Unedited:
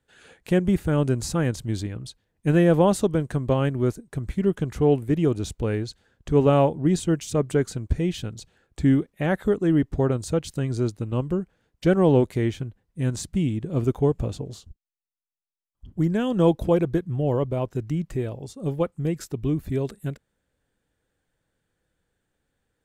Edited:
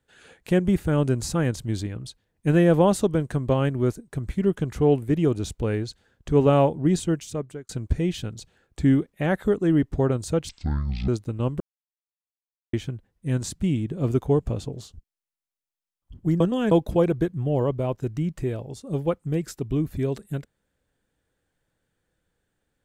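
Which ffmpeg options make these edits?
ffmpeg -i in.wav -filter_complex "[0:a]asplit=8[link_01][link_02][link_03][link_04][link_05][link_06][link_07][link_08];[link_01]atrim=end=7.69,asetpts=PTS-STARTPTS,afade=type=out:start_time=7:duration=0.69[link_09];[link_02]atrim=start=7.69:end=10.494,asetpts=PTS-STARTPTS,afade=type=in:duration=0.004:curve=hsin[link_10];[link_03]atrim=start=10.49:end=10.81,asetpts=PTS-STARTPTS,asetrate=23814,aresample=44100,atrim=end_sample=26133,asetpts=PTS-STARTPTS[link_11];[link_04]atrim=start=10.806:end=11.33,asetpts=PTS-STARTPTS,afade=type=out:start_time=0.52:duration=0.004:curve=hsin[link_12];[link_05]atrim=start=11.33:end=12.46,asetpts=PTS-STARTPTS,volume=0[link_13];[link_06]atrim=start=12.46:end=16.132,asetpts=PTS-STARTPTS,afade=type=in:duration=0.004:curve=hsin[link_14];[link_07]atrim=start=16.128:end=16.442,asetpts=PTS-STARTPTS,areverse[link_15];[link_08]atrim=start=16.438[link_16];[link_09][link_10]concat=n=2:v=0:a=1[link_17];[link_17][link_11]acrossfade=duration=0.004:curve1=hsin:curve2=hsin[link_18];[link_12][link_13][link_14]concat=n=3:v=0:a=1[link_19];[link_18][link_19]acrossfade=duration=0.004:curve1=hsin:curve2=hsin[link_20];[link_20][link_15]acrossfade=duration=0.004:curve1=hsin:curve2=hsin[link_21];[link_21][link_16]acrossfade=duration=0.004:curve1=hsin:curve2=hsin" out.wav

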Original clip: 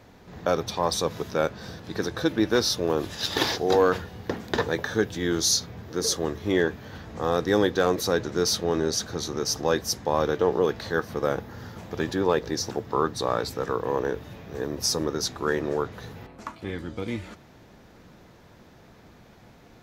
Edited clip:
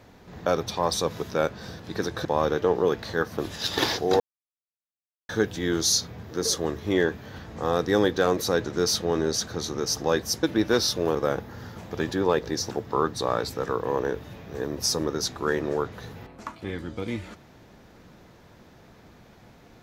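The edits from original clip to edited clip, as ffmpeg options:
ffmpeg -i in.wav -filter_complex "[0:a]asplit=7[link_01][link_02][link_03][link_04][link_05][link_06][link_07];[link_01]atrim=end=2.252[link_08];[link_02]atrim=start=10.018:end=11.152[link_09];[link_03]atrim=start=2.968:end=3.79,asetpts=PTS-STARTPTS,afade=type=out:start_time=0.818:duration=0.004:curve=hsin[link_10];[link_04]atrim=start=3.79:end=4.88,asetpts=PTS-STARTPTS,volume=0[link_11];[link_05]atrim=start=4.88:end=10.022,asetpts=PTS-STARTPTS,afade=type=in:duration=0.004:curve=hsin[link_12];[link_06]atrim=start=2.248:end=2.972[link_13];[link_07]atrim=start=11.148[link_14];[link_08][link_09]acrossfade=duration=0.004:curve1=hsin:curve2=hsin[link_15];[link_10][link_11][link_12]concat=n=3:v=0:a=1[link_16];[link_15][link_16]acrossfade=duration=0.004:curve1=hsin:curve2=hsin[link_17];[link_17][link_13]acrossfade=duration=0.004:curve1=hsin:curve2=hsin[link_18];[link_18][link_14]acrossfade=duration=0.004:curve1=hsin:curve2=hsin" out.wav

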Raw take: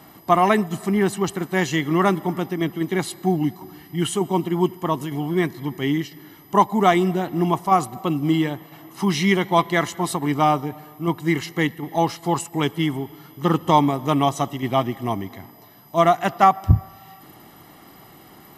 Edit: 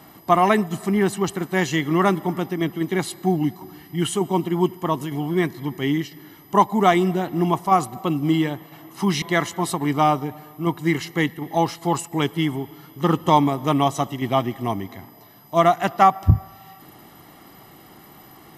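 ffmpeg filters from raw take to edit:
ffmpeg -i in.wav -filter_complex "[0:a]asplit=2[link_01][link_02];[link_01]atrim=end=9.222[link_03];[link_02]atrim=start=9.628[link_04];[link_03][link_04]acrossfade=duration=0.004:curve1=hsin:curve2=hsin" out.wav

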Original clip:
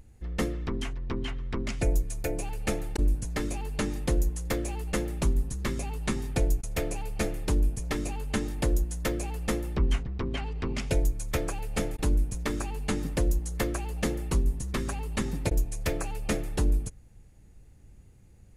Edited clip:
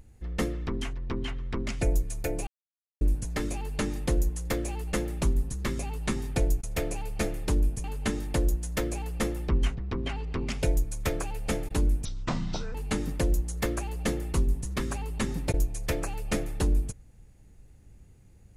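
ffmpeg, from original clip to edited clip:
ffmpeg -i in.wav -filter_complex "[0:a]asplit=6[link_01][link_02][link_03][link_04][link_05][link_06];[link_01]atrim=end=2.47,asetpts=PTS-STARTPTS,afade=type=out:start_time=2.466:duration=0.004:curve=hsin[link_07];[link_02]atrim=start=2.47:end=3.01,asetpts=PTS-STARTPTS,volume=0[link_08];[link_03]atrim=start=3.01:end=7.842,asetpts=PTS-STARTPTS,afade=type=in:duration=0.004:curve=hsin[link_09];[link_04]atrim=start=8.118:end=12.334[link_10];[link_05]atrim=start=12.33:end=12.72,asetpts=PTS-STARTPTS,asetrate=24696,aresample=44100,atrim=end_sample=30712,asetpts=PTS-STARTPTS[link_11];[link_06]atrim=start=12.716[link_12];[link_07][link_08][link_09]concat=n=3:v=0:a=1[link_13];[link_13][link_10]acrossfade=duration=0.004:curve1=hsin:curve2=hsin[link_14];[link_14][link_11]acrossfade=duration=0.004:curve1=hsin:curve2=hsin[link_15];[link_15][link_12]acrossfade=duration=0.004:curve1=hsin:curve2=hsin" out.wav

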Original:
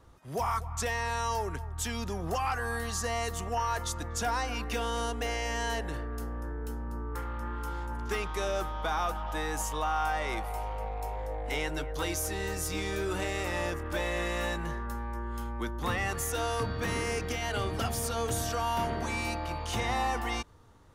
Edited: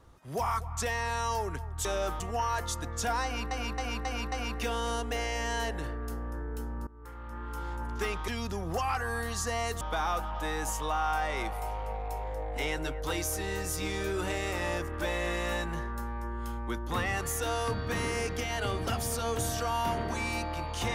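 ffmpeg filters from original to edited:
ffmpeg -i in.wav -filter_complex "[0:a]asplit=10[link_01][link_02][link_03][link_04][link_05][link_06][link_07][link_08][link_09][link_10];[link_01]atrim=end=1.852[link_11];[link_02]atrim=start=8.378:end=8.732[link_12];[link_03]atrim=start=3.378:end=4.692[link_13];[link_04]atrim=start=4.418:end=4.692[link_14];[link_05]atrim=start=4.418:end=4.692[link_15];[link_06]atrim=start=4.418:end=4.692[link_16];[link_07]atrim=start=4.418:end=6.97,asetpts=PTS-STARTPTS,afade=type=out:start_time=2.548:duration=0.004:curve=hsin:silence=0.1[link_17];[link_08]atrim=start=6.97:end=8.382,asetpts=PTS-STARTPTS,afade=type=in:duration=0.87:silence=0.1[link_18];[link_09]atrim=start=1.848:end=3.382[link_19];[link_10]atrim=start=8.728[link_20];[link_11][link_12]acrossfade=duration=0.004:curve1=hsin:curve2=hsin[link_21];[link_21][link_13]acrossfade=duration=0.004:curve1=hsin:curve2=hsin[link_22];[link_22][link_14]acrossfade=duration=0.004:curve1=hsin:curve2=hsin[link_23];[link_23][link_15]acrossfade=duration=0.004:curve1=hsin:curve2=hsin[link_24];[link_24][link_16]acrossfade=duration=0.004:curve1=hsin:curve2=hsin[link_25];[link_17][link_18]concat=n=2:v=0:a=1[link_26];[link_25][link_26]acrossfade=duration=0.004:curve1=hsin:curve2=hsin[link_27];[link_27][link_19]acrossfade=duration=0.004:curve1=hsin:curve2=hsin[link_28];[link_28][link_20]acrossfade=duration=0.004:curve1=hsin:curve2=hsin" out.wav

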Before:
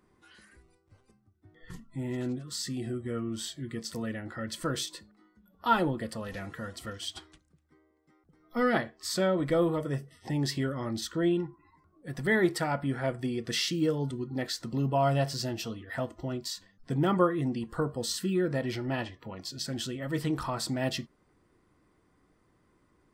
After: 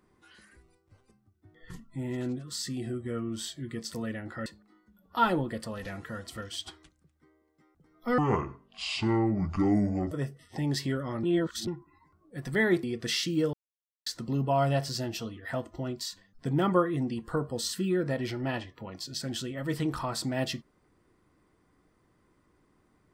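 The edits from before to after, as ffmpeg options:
ffmpeg -i in.wav -filter_complex "[0:a]asplit=9[link_01][link_02][link_03][link_04][link_05][link_06][link_07][link_08][link_09];[link_01]atrim=end=4.462[link_10];[link_02]atrim=start=4.948:end=8.674[link_11];[link_03]atrim=start=8.67:end=9.83,asetpts=PTS-STARTPTS,asetrate=26460,aresample=44100[link_12];[link_04]atrim=start=9.826:end=10.952[link_13];[link_05]atrim=start=10.948:end=11.392,asetpts=PTS-STARTPTS,areverse[link_14];[link_06]atrim=start=11.388:end=12.552[link_15];[link_07]atrim=start=13.278:end=13.98,asetpts=PTS-STARTPTS,afade=type=out:start_time=0.698:duration=0.004:curve=hsin[link_16];[link_08]atrim=start=13.98:end=14.51,asetpts=PTS-STARTPTS,volume=0[link_17];[link_09]atrim=start=14.51,asetpts=PTS-STARTPTS,afade=type=in:duration=0.004:curve=hsin[link_18];[link_10][link_11]acrossfade=duration=0.004:curve1=hsin:curve2=hsin[link_19];[link_19][link_12]acrossfade=duration=0.004:curve1=hsin:curve2=hsin[link_20];[link_20][link_13]acrossfade=duration=0.004:curve1=hsin:curve2=hsin[link_21];[link_21][link_14]acrossfade=duration=0.004:curve1=hsin:curve2=hsin[link_22];[link_22][link_15]acrossfade=duration=0.004:curve1=hsin:curve2=hsin[link_23];[link_16][link_17][link_18]concat=n=3:v=0:a=1[link_24];[link_23][link_24]acrossfade=duration=0.004:curve1=hsin:curve2=hsin" out.wav

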